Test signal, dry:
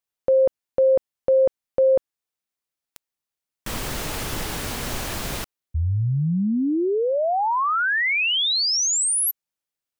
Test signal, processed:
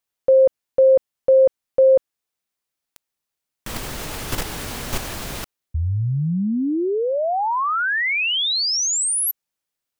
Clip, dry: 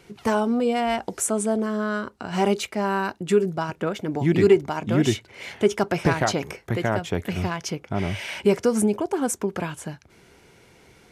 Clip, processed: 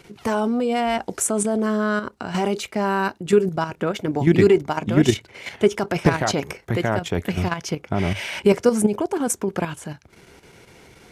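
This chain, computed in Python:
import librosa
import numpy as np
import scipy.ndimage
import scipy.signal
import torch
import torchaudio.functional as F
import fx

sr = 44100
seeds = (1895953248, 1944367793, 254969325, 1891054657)

y = fx.level_steps(x, sr, step_db=9)
y = y * librosa.db_to_amplitude(6.0)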